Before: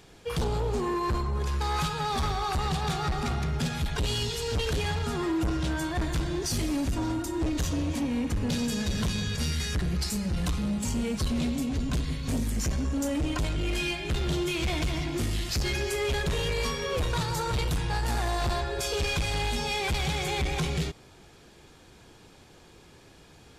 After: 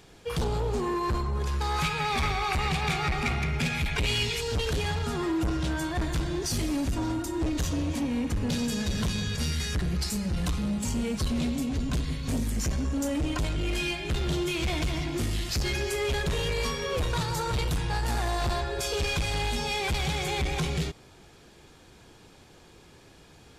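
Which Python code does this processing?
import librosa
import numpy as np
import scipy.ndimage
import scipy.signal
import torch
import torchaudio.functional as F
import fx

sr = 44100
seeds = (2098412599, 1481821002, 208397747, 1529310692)

y = fx.peak_eq(x, sr, hz=2300.0, db=15.0, octaves=0.43, at=(1.82, 4.41))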